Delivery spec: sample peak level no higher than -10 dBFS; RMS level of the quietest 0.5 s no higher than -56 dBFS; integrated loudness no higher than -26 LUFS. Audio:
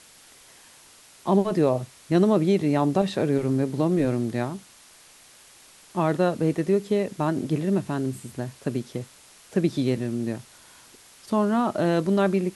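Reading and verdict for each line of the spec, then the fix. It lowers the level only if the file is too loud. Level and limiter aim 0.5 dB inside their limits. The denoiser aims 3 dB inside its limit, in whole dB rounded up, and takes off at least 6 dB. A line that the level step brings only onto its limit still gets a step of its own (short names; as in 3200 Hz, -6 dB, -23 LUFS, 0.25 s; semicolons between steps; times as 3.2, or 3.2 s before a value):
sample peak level -9.0 dBFS: fail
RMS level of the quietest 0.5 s -52 dBFS: fail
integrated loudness -24.5 LUFS: fail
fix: denoiser 6 dB, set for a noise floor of -52 dBFS; gain -2 dB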